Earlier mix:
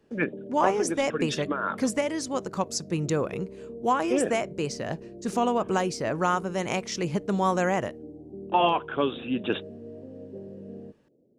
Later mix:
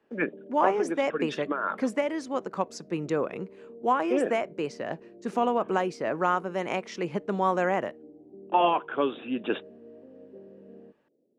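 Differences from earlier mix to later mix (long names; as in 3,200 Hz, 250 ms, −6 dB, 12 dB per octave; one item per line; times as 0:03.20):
background −5.5 dB
master: add three-way crossover with the lows and the highs turned down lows −18 dB, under 190 Hz, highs −14 dB, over 3,100 Hz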